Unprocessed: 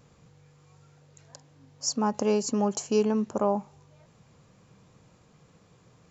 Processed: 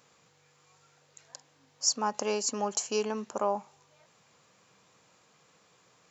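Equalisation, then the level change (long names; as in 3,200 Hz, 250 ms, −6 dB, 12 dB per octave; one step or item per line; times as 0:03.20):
high-pass filter 1,100 Hz 6 dB per octave
+3.0 dB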